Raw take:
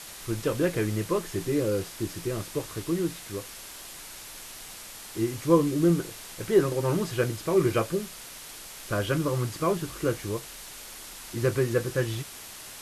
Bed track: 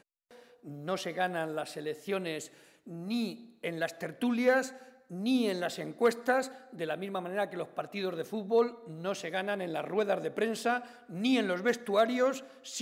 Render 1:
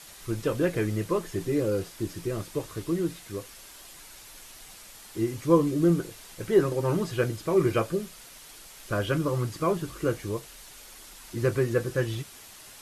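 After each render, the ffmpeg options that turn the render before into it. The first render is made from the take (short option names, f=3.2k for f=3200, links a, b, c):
-af "afftdn=nr=6:nf=-43"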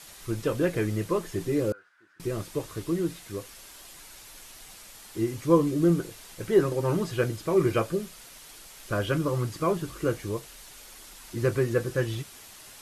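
-filter_complex "[0:a]asettb=1/sr,asplit=3[a][b][c];[a]atrim=end=1.724[d];[b]atrim=start=1.72:end=2.2,asetpts=PTS-STARTPTS,afade=t=in:d=0.004:c=qsin,afade=t=out:st=0.476:d=0.004:c=qsin,bandpass=f=1.5k:t=q:w=8.7[e];[c]atrim=start=2.196[f];[d][e]acrossfade=d=0.004:c1=hsin:c2=qsin[g];[g][f]acrossfade=d=0.004:c1=qsin:c2=hsin"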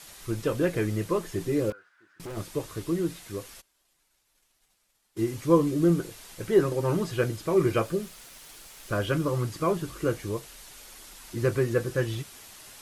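-filter_complex "[0:a]asettb=1/sr,asplit=3[a][b][c];[a]atrim=end=1.704[d];[b]atrim=start=1.7:end=2.37,asetpts=PTS-STARTPTS,afade=t=in:d=0.004:c=qsin,afade=t=out:st=0.666:d=0.004:c=qsin,asoftclip=type=hard:threshold=-35.5dB[e];[c]atrim=start=2.366[f];[d][e]acrossfade=d=0.004:c1=hsin:c2=qsin[g];[g][f]acrossfade=d=0.004:c1=qsin:c2=hsin,asplit=3[h][i][j];[h]afade=t=out:st=3.6:d=0.02[k];[i]agate=range=-33dB:threshold=-34dB:ratio=3:release=100:detection=peak,afade=t=in:st=3.6:d=0.02,afade=t=out:st=5.31:d=0.02[l];[j]afade=t=in:st=5.31:d=0.02[m];[k][l][m]amix=inputs=3:normalize=0,asettb=1/sr,asplit=3[n][o][p];[n]atrim=end=7.854[q];[o]atrim=start=7.85:end=9.27,asetpts=PTS-STARTPTS,afade=t=in:d=0.004:c=qsin,afade=t=out:st=1.416:d=0.004:c=qsin,aeval=exprs='val(0)*gte(abs(val(0)),0.00266)':c=same[r];[p]atrim=start=9.266[s];[q][r]acrossfade=d=0.004:c1=hsin:c2=qsin[t];[t][s]acrossfade=d=0.004:c1=qsin:c2=hsin"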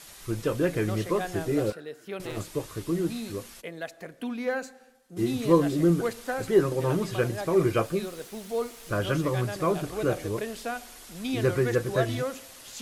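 -filter_complex "[1:a]volume=-3.5dB[a];[0:a][a]amix=inputs=2:normalize=0"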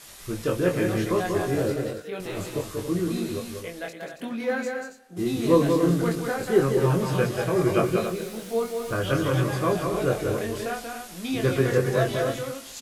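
-filter_complex "[0:a]asplit=2[a][b];[b]adelay=22,volume=-3dB[c];[a][c]amix=inputs=2:normalize=0,aecho=1:1:186.6|277:0.562|0.355"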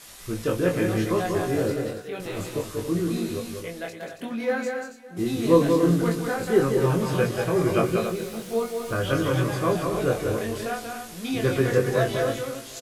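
-filter_complex "[0:a]asplit=2[a][b];[b]adelay=18,volume=-11dB[c];[a][c]amix=inputs=2:normalize=0,aecho=1:1:565:0.0841"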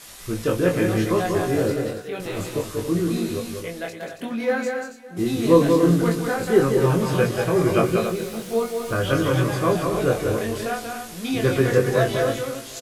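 -af "volume=3dB,alimiter=limit=-2dB:level=0:latency=1"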